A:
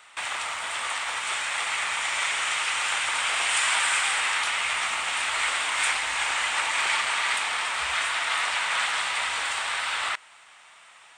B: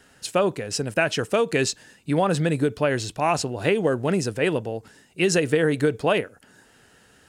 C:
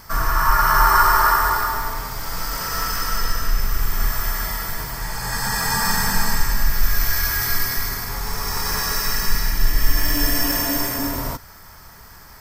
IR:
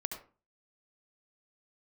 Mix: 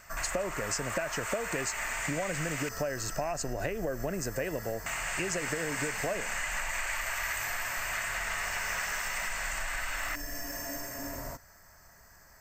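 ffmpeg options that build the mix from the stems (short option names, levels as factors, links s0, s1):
-filter_complex "[0:a]volume=0.422,asplit=3[s0][s1][s2];[s0]atrim=end=2.69,asetpts=PTS-STARTPTS,afade=t=out:st=2.686:d=0.004:c=hsin[s3];[s1]atrim=start=2.69:end=4.86,asetpts=PTS-STARTPTS,volume=0[s4];[s2]atrim=start=4.86,asetpts=PTS-STARTPTS,afade=t=in:d=0.004:c=hsin[s5];[s3][s4][s5]concat=n=3:v=0:a=1[s6];[1:a]highpass=46,agate=range=0.001:threshold=0.00316:ratio=16:detection=peak,acompressor=threshold=0.0398:ratio=4,volume=1[s7];[2:a]alimiter=limit=0.224:level=0:latency=1:release=367,volume=0.178[s8];[s6][s7][s8]amix=inputs=3:normalize=0,superequalizer=8b=2.24:11b=1.78:13b=0.398:15b=2.24:16b=0.501,acompressor=threshold=0.0316:ratio=4"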